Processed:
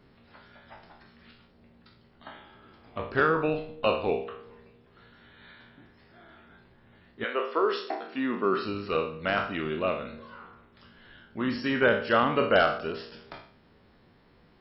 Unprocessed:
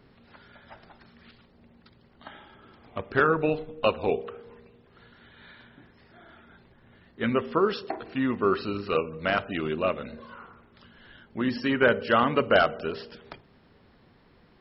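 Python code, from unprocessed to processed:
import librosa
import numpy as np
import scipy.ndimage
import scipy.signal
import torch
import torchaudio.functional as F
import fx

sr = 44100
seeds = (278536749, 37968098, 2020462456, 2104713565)

y = fx.spec_trails(x, sr, decay_s=0.51)
y = fx.highpass(y, sr, hz=fx.line((7.23, 450.0), (8.64, 130.0)), slope=24, at=(7.23, 8.64), fade=0.02)
y = F.gain(torch.from_numpy(y), -3.0).numpy()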